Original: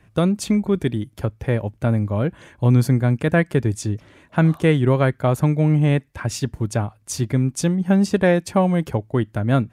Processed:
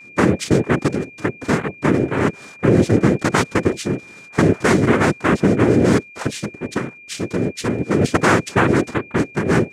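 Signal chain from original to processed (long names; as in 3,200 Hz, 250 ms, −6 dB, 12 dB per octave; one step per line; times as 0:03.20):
in parallel at −3 dB: brickwall limiter −12 dBFS, peak gain reduction 7 dB
0:06.26–0:08.01: on the sum: tuned comb filter 520 Hz, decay 0.18 s, mix 40%
cochlear-implant simulation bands 3
steady tone 2,400 Hz −38 dBFS
level −1.5 dB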